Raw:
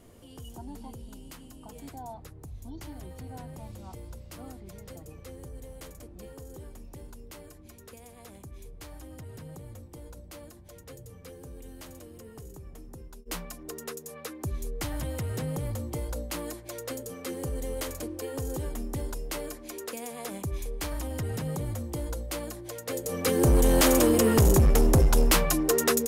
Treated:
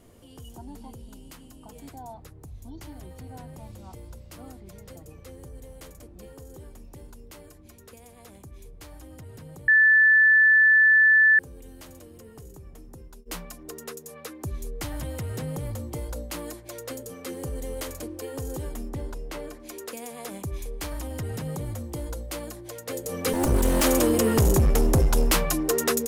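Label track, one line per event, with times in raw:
9.680000	11.390000	beep over 1,750 Hz −13.5 dBFS
18.890000	19.600000	high-shelf EQ 4,900 Hz −11 dB
23.330000	23.840000	lower of the sound and its delayed copy delay 3.4 ms

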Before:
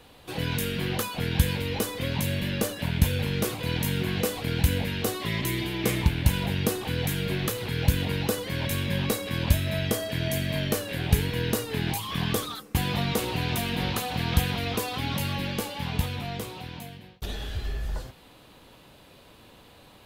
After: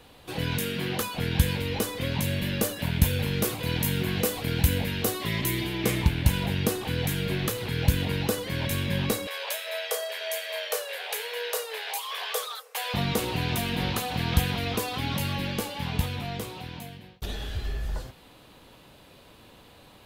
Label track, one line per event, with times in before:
0.580000	1.010000	high-pass filter 130 Hz
2.420000	5.660000	high-shelf EQ 11,000 Hz +7 dB
9.270000	12.940000	Butterworth high-pass 440 Hz 96 dB per octave

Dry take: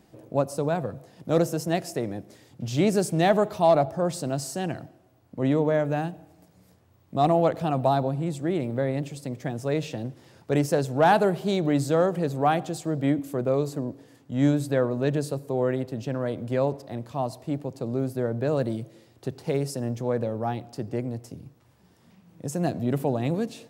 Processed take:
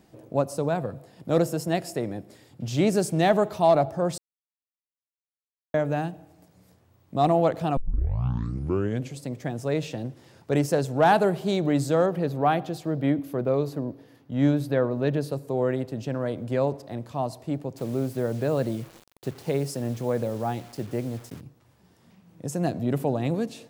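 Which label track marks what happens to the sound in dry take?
0.730000	2.640000	notch filter 6,100 Hz, Q 8.9
4.180000	5.740000	silence
7.770000	7.770000	tape start 1.41 s
12.060000	15.320000	parametric band 7,700 Hz −11.5 dB 0.64 octaves
17.770000	21.410000	bit-depth reduction 8 bits, dither none

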